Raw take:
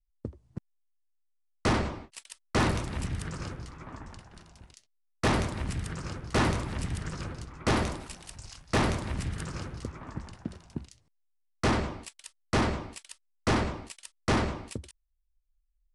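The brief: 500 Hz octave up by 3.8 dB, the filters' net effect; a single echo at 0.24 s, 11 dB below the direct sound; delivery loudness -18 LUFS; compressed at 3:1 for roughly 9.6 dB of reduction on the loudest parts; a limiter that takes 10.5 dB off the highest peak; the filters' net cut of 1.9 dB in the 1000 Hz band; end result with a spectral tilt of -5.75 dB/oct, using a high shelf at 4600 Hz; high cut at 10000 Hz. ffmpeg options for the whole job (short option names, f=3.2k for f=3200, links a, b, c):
-af "lowpass=10k,equalizer=f=500:t=o:g=6,equalizer=f=1k:t=o:g=-4,highshelf=f=4.6k:g=-6,acompressor=threshold=-34dB:ratio=3,alimiter=level_in=7.5dB:limit=-24dB:level=0:latency=1,volume=-7.5dB,aecho=1:1:240:0.282,volume=24.5dB"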